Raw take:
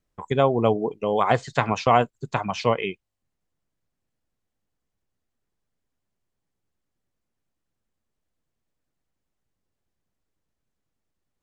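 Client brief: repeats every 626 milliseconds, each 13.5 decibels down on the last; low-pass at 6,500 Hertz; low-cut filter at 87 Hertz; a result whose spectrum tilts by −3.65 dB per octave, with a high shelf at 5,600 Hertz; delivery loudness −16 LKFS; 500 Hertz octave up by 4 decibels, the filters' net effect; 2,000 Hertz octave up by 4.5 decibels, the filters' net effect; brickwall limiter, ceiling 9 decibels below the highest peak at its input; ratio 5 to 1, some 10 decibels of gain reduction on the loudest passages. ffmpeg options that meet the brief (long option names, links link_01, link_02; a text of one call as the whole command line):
ffmpeg -i in.wav -af "highpass=87,lowpass=6500,equalizer=frequency=500:width_type=o:gain=4.5,equalizer=frequency=2000:width_type=o:gain=4.5,highshelf=frequency=5600:gain=8.5,acompressor=threshold=-22dB:ratio=5,alimiter=limit=-15dB:level=0:latency=1,aecho=1:1:626|1252:0.211|0.0444,volume=13dB" out.wav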